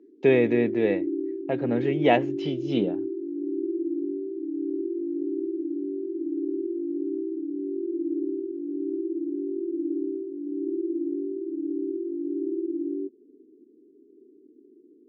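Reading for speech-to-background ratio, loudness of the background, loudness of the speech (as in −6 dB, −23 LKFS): 5.5 dB, −30.5 LKFS, −25.0 LKFS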